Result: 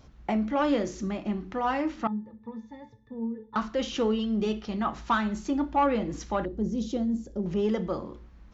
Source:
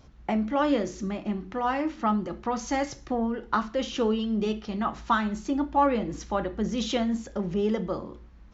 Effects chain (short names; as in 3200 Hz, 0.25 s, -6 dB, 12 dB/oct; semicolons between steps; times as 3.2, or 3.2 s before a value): 6.45–7.46 EQ curve 390 Hz 0 dB, 1100 Hz -17 dB, 2500 Hz -19 dB, 5000 Hz -9 dB; soft clip -14.5 dBFS, distortion -22 dB; 2.07–3.56 octave resonator A, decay 0.15 s